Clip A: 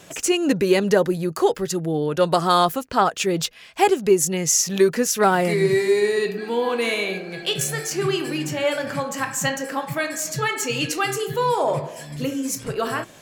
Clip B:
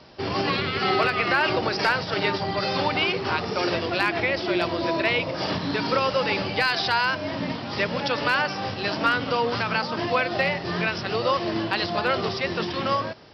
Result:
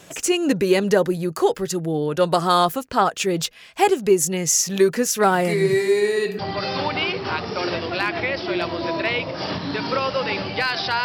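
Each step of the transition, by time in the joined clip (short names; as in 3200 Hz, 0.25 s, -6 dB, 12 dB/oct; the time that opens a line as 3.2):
clip A
6.39 switch to clip B from 2.39 s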